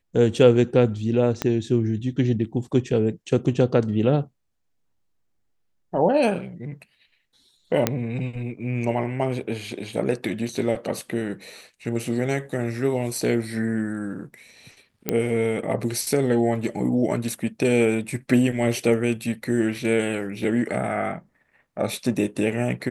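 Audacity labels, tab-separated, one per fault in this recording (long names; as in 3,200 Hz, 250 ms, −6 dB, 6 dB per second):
1.420000	1.420000	click −9 dBFS
7.870000	7.870000	click −4 dBFS
15.090000	15.090000	click −7 dBFS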